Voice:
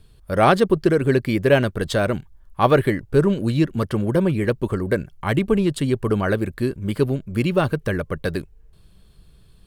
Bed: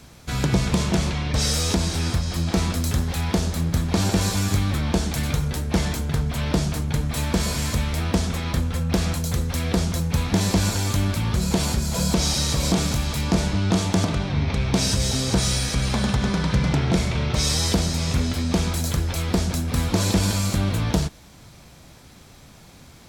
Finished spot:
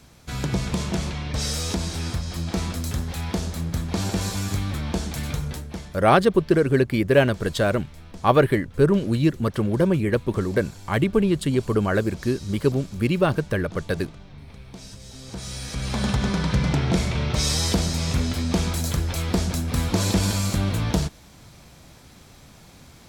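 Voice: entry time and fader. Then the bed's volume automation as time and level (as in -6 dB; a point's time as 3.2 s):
5.65 s, -1.0 dB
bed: 5.52 s -4.5 dB
5.97 s -20.5 dB
15.05 s -20.5 dB
16.07 s -1 dB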